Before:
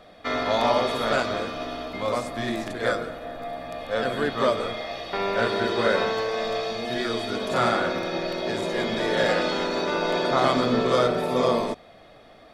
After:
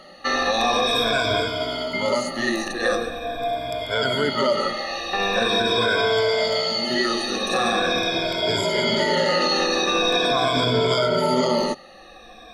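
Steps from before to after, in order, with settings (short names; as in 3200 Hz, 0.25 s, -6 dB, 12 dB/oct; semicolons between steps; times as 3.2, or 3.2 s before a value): moving spectral ripple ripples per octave 1.7, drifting -0.43 Hz, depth 22 dB; bell 4800 Hz +7 dB 1.8 oct; limiter -11 dBFS, peak gain reduction 8 dB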